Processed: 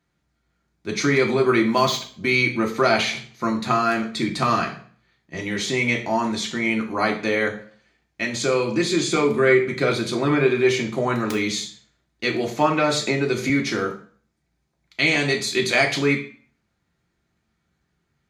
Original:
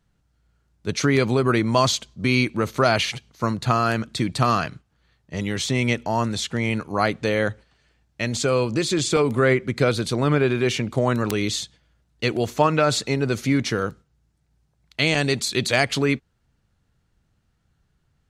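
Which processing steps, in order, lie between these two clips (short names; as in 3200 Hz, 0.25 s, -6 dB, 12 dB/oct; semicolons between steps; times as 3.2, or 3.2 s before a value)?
1.67–2.3 median filter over 5 samples; reverb RT60 0.45 s, pre-delay 3 ms, DRR 0.5 dB; 13.07–13.5 three-band squash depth 100%; gain -5.5 dB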